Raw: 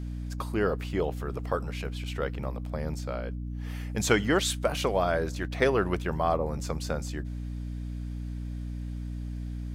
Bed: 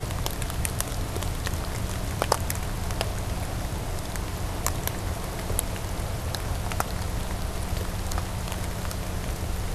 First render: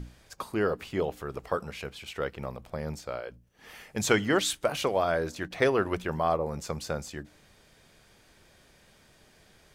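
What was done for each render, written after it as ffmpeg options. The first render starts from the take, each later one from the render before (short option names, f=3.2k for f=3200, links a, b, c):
-af "bandreject=f=60:t=h:w=6,bandreject=f=120:t=h:w=6,bandreject=f=180:t=h:w=6,bandreject=f=240:t=h:w=6,bandreject=f=300:t=h:w=6"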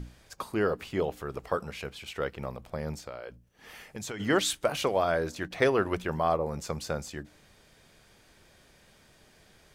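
-filter_complex "[0:a]asplit=3[a][b][c];[a]afade=t=out:st=3.06:d=0.02[d];[b]acompressor=threshold=-35dB:ratio=6:attack=3.2:release=140:knee=1:detection=peak,afade=t=in:st=3.06:d=0.02,afade=t=out:st=4.19:d=0.02[e];[c]afade=t=in:st=4.19:d=0.02[f];[d][e][f]amix=inputs=3:normalize=0"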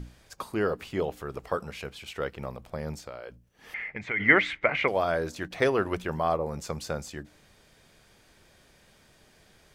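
-filter_complex "[0:a]asettb=1/sr,asplit=3[a][b][c];[a]atrim=end=3.744[d];[b]atrim=start=3.74:end=4.88,asetpts=PTS-STARTPTS,afade=t=in:d=0.004:c=qsin,afade=t=out:st=1.136:d=0.004:c=qsin,lowpass=f=2.1k:t=q:w=13[e];[c]atrim=start=4.876[f];[d][e]acrossfade=d=0.004:c1=hsin:c2=qsin[g];[g][f]acrossfade=d=0.004:c1=qsin:c2=hsin"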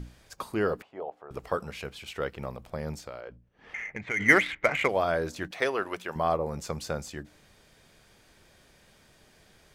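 -filter_complex "[0:a]asettb=1/sr,asplit=3[a][b][c];[a]atrim=end=0.824[d];[b]atrim=start=0.82:end=1.31,asetpts=PTS-STARTPTS,afade=t=in:d=0.004:c=qsin,afade=t=out:st=0.486:d=0.004:c=qsin,bandpass=f=740:t=q:w=2.5[e];[c]atrim=start=1.306[f];[d][e]acrossfade=d=0.004:c1=hsin:c2=qsin[g];[g][f]acrossfade=d=0.004:c1=qsin:c2=hsin,asettb=1/sr,asplit=3[h][i][j];[h]atrim=end=3.214[k];[i]atrim=start=3.21:end=4.89,asetpts=PTS-STARTPTS,afade=t=in:d=0.004:c=qsin,afade=t=out:st=1.676:d=0.004:c=qsin,adynamicsmooth=sensitivity=4.5:basefreq=2.9k[l];[j]atrim=start=4.886[m];[k][l]acrossfade=d=0.004:c1=hsin:c2=qsin[n];[n][m]acrossfade=d=0.004:c1=qsin:c2=hsin,asettb=1/sr,asplit=3[o][p][q];[o]atrim=end=5.514[r];[p]atrim=start=5.51:end=6.16,asetpts=PTS-STARTPTS,afade=t=in:d=0.004:c=qsin,afade=t=out:st=0.646:d=0.004:c=qsin,highpass=f=640:p=1[s];[q]atrim=start=6.156[t];[r][s]acrossfade=d=0.004:c1=hsin:c2=qsin[u];[u][t]acrossfade=d=0.004:c1=qsin:c2=hsin"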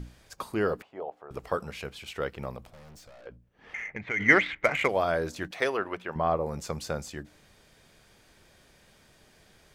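-filter_complex "[0:a]asettb=1/sr,asplit=3[a][b][c];[a]atrim=end=2.694[d];[b]atrim=start=2.69:end=3.26,asetpts=PTS-STARTPTS,afade=t=in:d=0.004:c=qsin,afade=t=out:st=0.566:d=0.004:c=qsin,aeval=exprs='(tanh(282*val(0)+0.35)-tanh(0.35))/282':c=same[e];[c]atrim=start=3.256[f];[d][e]acrossfade=d=0.004:c1=hsin:c2=qsin[g];[g][f]acrossfade=d=0.004:c1=qsin:c2=hsin,asettb=1/sr,asplit=3[h][i][j];[h]atrim=end=3.884[k];[i]atrim=start=3.88:end=4.56,asetpts=PTS-STARTPTS,afade=t=in:d=0.004:c=qsin,afade=t=out:st=0.676:d=0.004:c=qsin,lowpass=4.8k[l];[j]atrim=start=4.556[m];[k][l]acrossfade=d=0.004:c1=hsin:c2=qsin[n];[n][m]acrossfade=d=0.004:c1=qsin:c2=hsin,asettb=1/sr,asplit=3[o][p][q];[o]atrim=end=5.774[r];[p]atrim=start=5.77:end=6.37,asetpts=PTS-STARTPTS,afade=t=in:d=0.004:c=qsin,afade=t=out:st=0.596:d=0.004:c=qsin,bass=f=250:g=2,treble=f=4k:g=-14[s];[q]atrim=start=6.366[t];[r][s]acrossfade=d=0.004:c1=hsin:c2=qsin[u];[u][t]acrossfade=d=0.004:c1=qsin:c2=hsin"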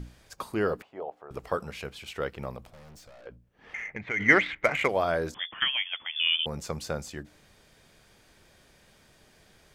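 -filter_complex "[0:a]asettb=1/sr,asplit=3[a][b][c];[a]atrim=end=5.344[d];[b]atrim=start=5.34:end=6.46,asetpts=PTS-STARTPTS,afade=t=in:d=0.004:c=qsin,afade=t=out:st=1.116:d=0.004:c=qsin,lowpass=f=3.1k:t=q:w=0.5098,lowpass=f=3.1k:t=q:w=0.6013,lowpass=f=3.1k:t=q:w=0.9,lowpass=f=3.1k:t=q:w=2.563,afreqshift=-3600[e];[c]atrim=start=6.456[f];[d][e]acrossfade=d=0.004:c1=hsin:c2=qsin[g];[g][f]acrossfade=d=0.004:c1=qsin:c2=hsin"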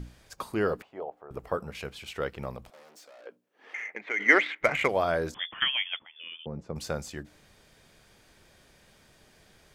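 -filter_complex "[0:a]asettb=1/sr,asplit=3[a][b][c];[a]atrim=end=1.044[d];[b]atrim=start=1.04:end=1.75,asetpts=PTS-STARTPTS,afade=t=in:d=0.004:c=qsin,afade=t=out:st=0.706:d=0.004:c=qsin,equalizer=f=4.9k:w=0.43:g=-8.5[e];[c]atrim=start=1.746[f];[d][e]acrossfade=d=0.004:c1=hsin:c2=qsin[g];[g][f]acrossfade=d=0.004:c1=qsin:c2=hsin,asettb=1/sr,asplit=3[h][i][j];[h]atrim=end=2.704[k];[i]atrim=start=2.7:end=4.61,asetpts=PTS-STARTPTS,afade=t=in:d=0.004:c=qsin,afade=t=out:st=1.906:d=0.004:c=qsin,highpass=f=290:w=0.5412,highpass=f=290:w=1.3066[l];[j]atrim=start=4.606[m];[k][l]acrossfade=d=0.004:c1=hsin:c2=qsin[n];[n][m]acrossfade=d=0.004:c1=qsin:c2=hsin,asettb=1/sr,asplit=3[o][p][q];[o]atrim=end=5.994[r];[p]atrim=start=5.99:end=6.76,asetpts=PTS-STARTPTS,afade=t=in:d=0.004:c=qsin,afade=t=out:st=0.766:d=0.004:c=qsin,bandpass=f=220:t=q:w=0.58[s];[q]atrim=start=6.756[t];[r][s]acrossfade=d=0.004:c1=hsin:c2=qsin[u];[u][t]acrossfade=d=0.004:c1=qsin:c2=hsin"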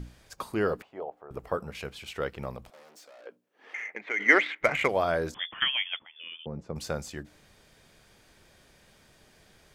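-af anull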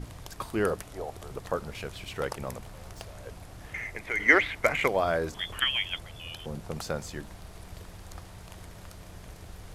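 -filter_complex "[1:a]volume=-15.5dB[a];[0:a][a]amix=inputs=2:normalize=0"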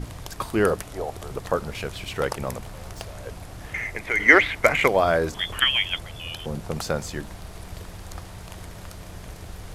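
-af "volume=6.5dB,alimiter=limit=-1dB:level=0:latency=1"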